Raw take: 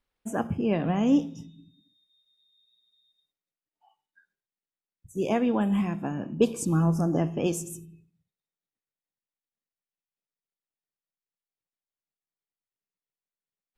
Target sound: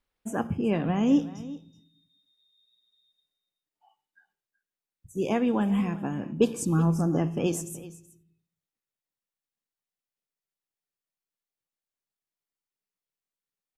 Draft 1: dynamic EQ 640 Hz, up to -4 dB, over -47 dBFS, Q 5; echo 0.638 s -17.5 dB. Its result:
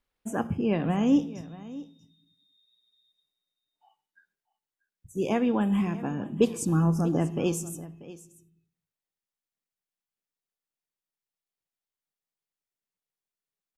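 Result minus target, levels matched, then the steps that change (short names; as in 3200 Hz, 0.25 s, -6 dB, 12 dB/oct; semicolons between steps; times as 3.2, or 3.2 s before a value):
echo 0.262 s late
change: echo 0.376 s -17.5 dB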